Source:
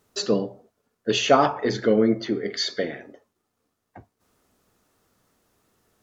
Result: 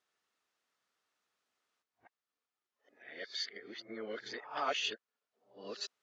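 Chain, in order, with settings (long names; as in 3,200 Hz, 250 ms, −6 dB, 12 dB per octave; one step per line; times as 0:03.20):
played backwards from end to start
low-pass filter 2,800 Hz 12 dB per octave
first difference
level +1 dB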